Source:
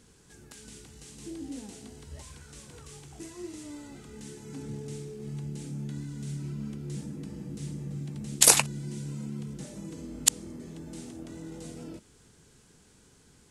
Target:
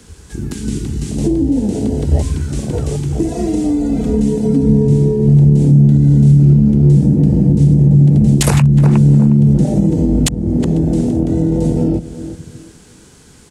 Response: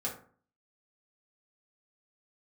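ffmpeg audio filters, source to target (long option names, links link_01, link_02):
-filter_complex "[0:a]afwtdn=0.00708,acrossover=split=420|2200[link_01][link_02][link_03];[link_03]acompressor=threshold=-31dB:ratio=6[link_04];[link_01][link_02][link_04]amix=inputs=3:normalize=0,asettb=1/sr,asplit=3[link_05][link_06][link_07];[link_05]atrim=end=3.284[link_08];[link_06]atrim=start=3.28:end=4.87,asetpts=PTS-STARTPTS,afade=type=in:duration=0.004:curve=qsin,afade=type=out:start_time=1.586:duration=0.004:curve=qsin,aecho=1:1:4.3:0.82,atrim=end_sample=70119[link_09];[link_07]atrim=start=4.866[link_10];[link_08][link_09]acrossfade=duration=0.004:curve1=hsin:curve2=qsin[link_11];[link_11][link_10]acrossfade=duration=0.004:curve1=qsin:curve2=hsin,asplit=2[link_12][link_13];[link_13]adelay=360,lowpass=frequency=1000:poles=1,volume=-17.5dB,asplit=2[link_14][link_15];[link_15]adelay=360,lowpass=frequency=1000:poles=1,volume=0.31,asplit=2[link_16][link_17];[link_17]adelay=360,lowpass=frequency=1000:poles=1,volume=0.31[link_18];[link_14][link_16][link_18]amix=inputs=3:normalize=0[link_19];[link_12][link_19]amix=inputs=2:normalize=0,acrossover=split=170[link_20][link_21];[link_21]acompressor=threshold=-47dB:ratio=6[link_22];[link_20][link_22]amix=inputs=2:normalize=0,alimiter=level_in=33dB:limit=-1dB:release=50:level=0:latency=1,volume=-1dB"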